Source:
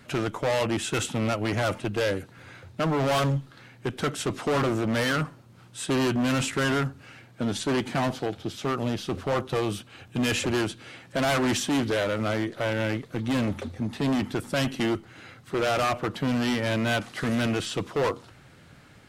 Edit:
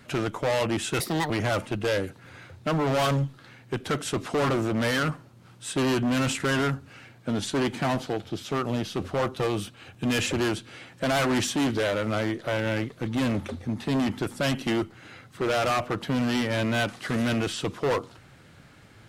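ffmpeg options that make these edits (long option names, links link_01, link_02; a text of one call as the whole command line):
ffmpeg -i in.wav -filter_complex "[0:a]asplit=3[link_01][link_02][link_03];[link_01]atrim=end=1.004[link_04];[link_02]atrim=start=1:end=1.43,asetpts=PTS-STARTPTS,asetrate=63063,aresample=44100[link_05];[link_03]atrim=start=1.426[link_06];[link_04][link_05]acrossfade=duration=0.004:curve1=hsin:curve2=hsin[link_07];[link_07][link_06]acrossfade=duration=0.004:curve1=hsin:curve2=hsin" out.wav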